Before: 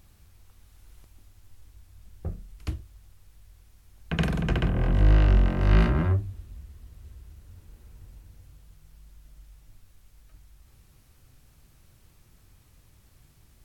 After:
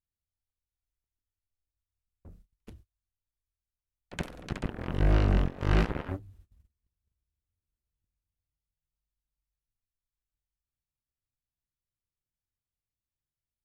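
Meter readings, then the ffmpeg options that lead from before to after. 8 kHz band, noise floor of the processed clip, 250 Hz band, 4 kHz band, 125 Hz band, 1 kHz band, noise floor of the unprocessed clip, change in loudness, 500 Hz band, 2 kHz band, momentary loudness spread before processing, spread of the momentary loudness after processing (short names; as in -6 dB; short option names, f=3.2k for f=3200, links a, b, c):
n/a, under -85 dBFS, -5.0 dB, -5.0 dB, -7.0 dB, -3.0 dB, -59 dBFS, -5.0 dB, -3.0 dB, -5.0 dB, 19 LU, 14 LU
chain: -af "aeval=exprs='0.398*(cos(1*acos(clip(val(0)/0.398,-1,1)))-cos(1*PI/2))+0.0794*(cos(7*acos(clip(val(0)/0.398,-1,1)))-cos(7*PI/2))':c=same,agate=range=-26dB:threshold=-48dB:ratio=16:detection=peak,volume=-5.5dB"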